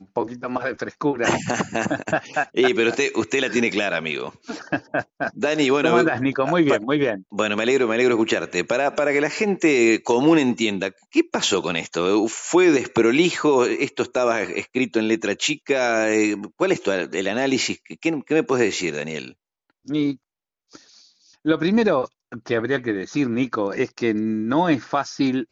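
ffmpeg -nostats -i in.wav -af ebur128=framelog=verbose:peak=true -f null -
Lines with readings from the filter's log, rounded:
Integrated loudness:
  I:         -21.2 LUFS
  Threshold: -31.5 LUFS
Loudness range:
  LRA:         4.9 LU
  Threshold: -41.4 LUFS
  LRA low:   -24.5 LUFS
  LRA high:  -19.6 LUFS
True peak:
  Peak:       -4.4 dBFS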